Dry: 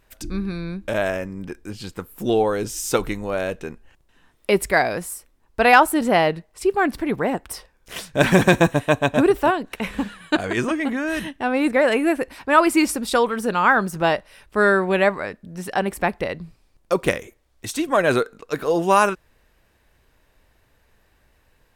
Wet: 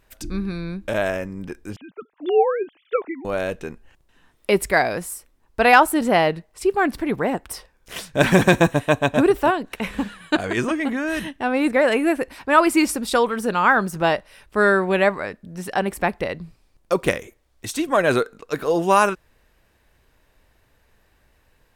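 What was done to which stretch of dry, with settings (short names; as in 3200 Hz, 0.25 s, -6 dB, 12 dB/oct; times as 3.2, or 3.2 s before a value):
1.76–3.25 sine-wave speech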